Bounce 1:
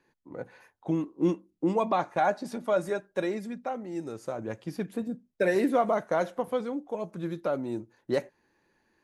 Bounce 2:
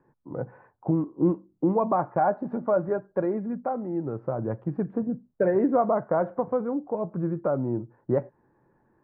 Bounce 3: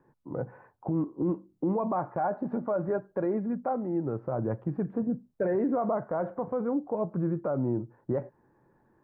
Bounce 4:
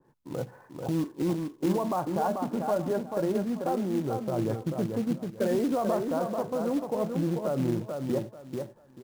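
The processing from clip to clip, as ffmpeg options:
ffmpeg -i in.wav -filter_complex "[0:a]lowpass=frequency=1300:width=0.5412,lowpass=frequency=1300:width=1.3066,equalizer=frequency=130:width_type=o:width=0.48:gain=10,asplit=2[link_01][link_02];[link_02]acompressor=threshold=-32dB:ratio=6,volume=0dB[link_03];[link_01][link_03]amix=inputs=2:normalize=0" out.wav
ffmpeg -i in.wav -af "alimiter=limit=-20.5dB:level=0:latency=1:release=41" out.wav
ffmpeg -i in.wav -af "aecho=1:1:439|878|1317:0.562|0.135|0.0324,acrusher=bits=4:mode=log:mix=0:aa=0.000001,adynamicequalizer=threshold=0.00631:dfrequency=1600:dqfactor=0.7:tfrequency=1600:tqfactor=0.7:attack=5:release=100:ratio=0.375:range=2:mode=cutabove:tftype=highshelf" out.wav

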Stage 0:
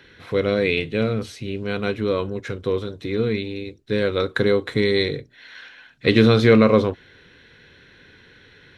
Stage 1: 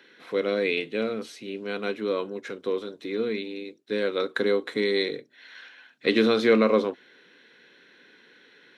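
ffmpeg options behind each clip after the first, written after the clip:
ffmpeg -i in.wav -af "highpass=frequency=220:width=0.5412,highpass=frequency=220:width=1.3066,volume=-4.5dB" out.wav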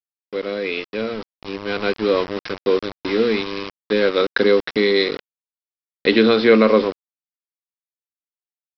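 ffmpeg -i in.wav -af "aresample=11025,aeval=exprs='val(0)*gte(abs(val(0)),0.0224)':channel_layout=same,aresample=44100,dynaudnorm=framelen=610:gausssize=5:maxgain=11.5dB" out.wav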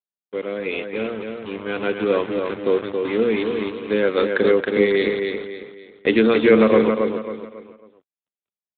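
ffmpeg -i in.wav -af "aecho=1:1:273|546|819|1092:0.562|0.202|0.0729|0.0262,volume=-1.5dB" -ar 8000 -c:a libopencore_amrnb -b:a 12200 out.amr

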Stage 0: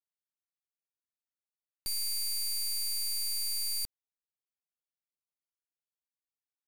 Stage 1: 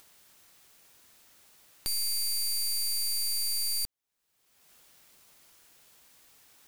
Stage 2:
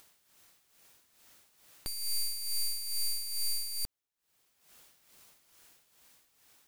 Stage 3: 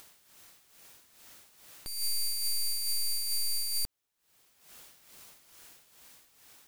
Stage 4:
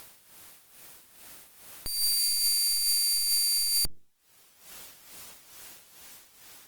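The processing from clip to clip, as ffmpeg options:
ffmpeg -i in.wav -af "acompressor=mode=upward:threshold=-36dB:ratio=2.5,volume=3dB" out.wav
ffmpeg -i in.wav -af "tremolo=f=2.3:d=0.68,dynaudnorm=framelen=220:gausssize=11:maxgain=3.5dB,aeval=exprs='clip(val(0),-1,0.0141)':channel_layout=same,volume=-2dB" out.wav
ffmpeg -i in.wav -af "alimiter=level_in=10dB:limit=-24dB:level=0:latency=1:release=232,volume=-10dB,volume=6.5dB" out.wav
ffmpeg -i in.wav -af "volume=7dB" -ar 48000 -c:a libopus -b:a 24k out.opus

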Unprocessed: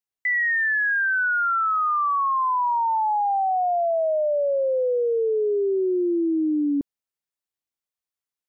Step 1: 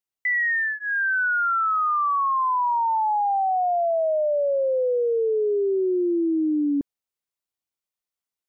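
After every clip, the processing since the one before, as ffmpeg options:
ffmpeg -i in.wav -af "bandreject=frequency=1700:width=15" out.wav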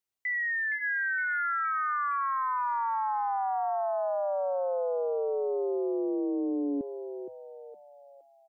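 ffmpeg -i in.wav -filter_complex "[0:a]alimiter=level_in=3dB:limit=-24dB:level=0:latency=1,volume=-3dB,asplit=2[link_01][link_02];[link_02]asplit=5[link_03][link_04][link_05][link_06][link_07];[link_03]adelay=465,afreqshift=91,volume=-9dB[link_08];[link_04]adelay=930,afreqshift=182,volume=-16.3dB[link_09];[link_05]adelay=1395,afreqshift=273,volume=-23.7dB[link_10];[link_06]adelay=1860,afreqshift=364,volume=-31dB[link_11];[link_07]adelay=2325,afreqshift=455,volume=-38.3dB[link_12];[link_08][link_09][link_10][link_11][link_12]amix=inputs=5:normalize=0[link_13];[link_01][link_13]amix=inputs=2:normalize=0" out.wav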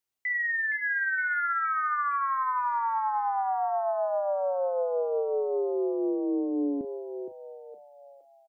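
ffmpeg -i in.wav -filter_complex "[0:a]asplit=2[link_01][link_02];[link_02]adelay=37,volume=-14dB[link_03];[link_01][link_03]amix=inputs=2:normalize=0,volume=1.5dB" out.wav

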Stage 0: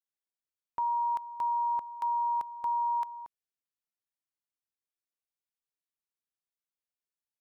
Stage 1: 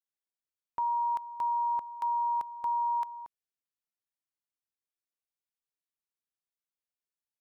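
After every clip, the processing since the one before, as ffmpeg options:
ffmpeg -i in.wav -af anull out.wav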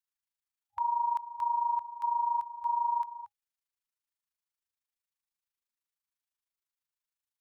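ffmpeg -i in.wav -af "afftfilt=real='re*(1-between(b*sr/4096,100,820))':imag='im*(1-between(b*sr/4096,100,820))':win_size=4096:overlap=0.75,tremolo=f=26:d=0.71,volume=3dB" out.wav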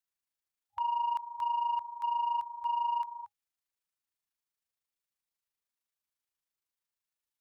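ffmpeg -i in.wav -af "asoftclip=type=tanh:threshold=-24dB" out.wav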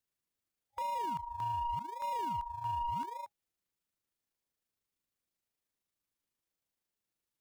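ffmpeg -i in.wav -filter_complex "[0:a]asplit=2[link_01][link_02];[link_02]acrusher=samples=41:mix=1:aa=0.000001:lfo=1:lforange=24.6:lforate=0.85,volume=-10.5dB[link_03];[link_01][link_03]amix=inputs=2:normalize=0,alimiter=level_in=6dB:limit=-24dB:level=0:latency=1:release=11,volume=-6dB" out.wav

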